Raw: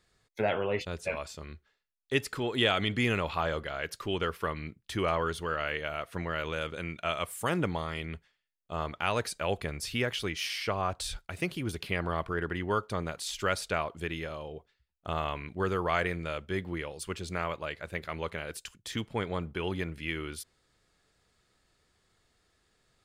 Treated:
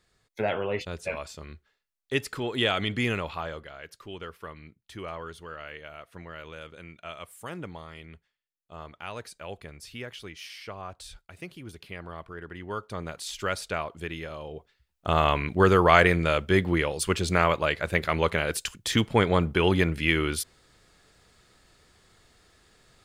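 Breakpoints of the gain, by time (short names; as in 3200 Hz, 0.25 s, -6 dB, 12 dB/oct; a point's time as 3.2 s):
3.08 s +1 dB
3.78 s -8.5 dB
12.42 s -8.5 dB
13.15 s 0 dB
14.27 s 0 dB
15.3 s +11 dB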